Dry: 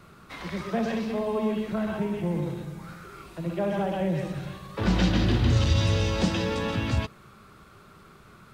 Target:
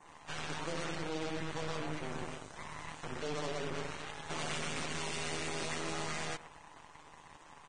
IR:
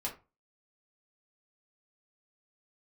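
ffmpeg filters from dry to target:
-filter_complex "[0:a]highpass=580,adynamicequalizer=threshold=0.00398:dfrequency=4700:dqfactor=1.1:tfrequency=4700:tqfactor=1.1:attack=5:release=100:ratio=0.375:range=1.5:mode=cutabove:tftype=bell,asplit=2[link_01][link_02];[link_02]adelay=122,lowpass=frequency=1800:poles=1,volume=-17.5dB,asplit=2[link_03][link_04];[link_04]adelay=122,lowpass=frequency=1800:poles=1,volume=0.19[link_05];[link_03][link_05]amix=inputs=2:normalize=0[link_06];[link_01][link_06]amix=inputs=2:normalize=0,asoftclip=type=tanh:threshold=-32dB,atempo=1.5,aeval=exprs='0.0251*(cos(1*acos(clip(val(0)/0.0251,-1,1)))-cos(1*PI/2))+0.00112*(cos(2*acos(clip(val(0)/0.0251,-1,1)))-cos(2*PI/2))+0.00126*(cos(5*acos(clip(val(0)/0.0251,-1,1)))-cos(5*PI/2))+0.0112*(cos(6*acos(clip(val(0)/0.0251,-1,1)))-cos(6*PI/2))+0.000562*(cos(8*acos(clip(val(0)/0.0251,-1,1)))-cos(8*PI/2))':channel_layout=same,tremolo=f=210:d=0.824,asetrate=32667,aresample=44100" -ar 22050 -c:a libvorbis -b:a 16k

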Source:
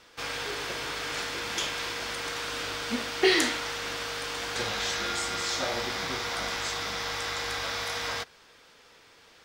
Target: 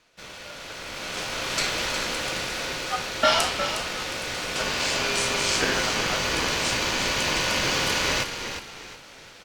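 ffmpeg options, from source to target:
ffmpeg -i in.wav -filter_complex "[0:a]aeval=exprs='val(0)*sin(2*PI*1000*n/s)':channel_layout=same,asplit=5[link_01][link_02][link_03][link_04][link_05];[link_02]adelay=360,afreqshift=-48,volume=-8.5dB[link_06];[link_03]adelay=720,afreqshift=-96,volume=-17.9dB[link_07];[link_04]adelay=1080,afreqshift=-144,volume=-27.2dB[link_08];[link_05]adelay=1440,afreqshift=-192,volume=-36.6dB[link_09];[link_01][link_06][link_07][link_08][link_09]amix=inputs=5:normalize=0,dynaudnorm=framelen=290:gausssize=9:maxgain=16dB,volume=-4.5dB" out.wav

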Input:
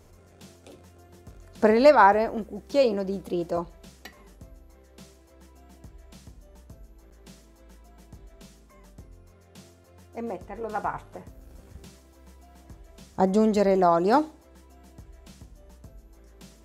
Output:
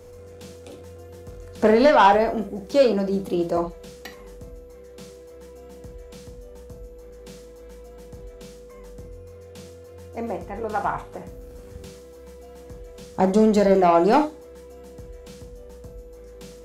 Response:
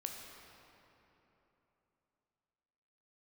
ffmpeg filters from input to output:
-filter_complex "[0:a]aeval=exprs='val(0)+0.00282*sin(2*PI*490*n/s)':channel_layout=same,acrossover=split=120[link_01][link_02];[link_02]asoftclip=type=tanh:threshold=-13.5dB[link_03];[link_01][link_03]amix=inputs=2:normalize=0[link_04];[1:a]atrim=start_sample=2205,atrim=end_sample=3528[link_05];[link_04][link_05]afir=irnorm=-1:irlink=0,volume=8dB"

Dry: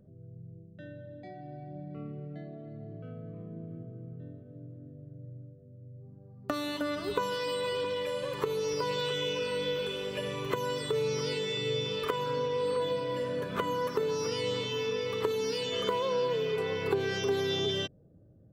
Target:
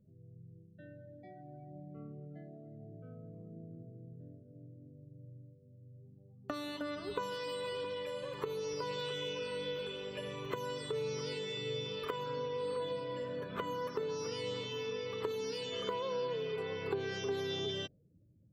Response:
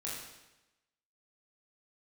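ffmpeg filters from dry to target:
-af "afftdn=noise_reduction=15:noise_floor=-54,volume=-7dB"

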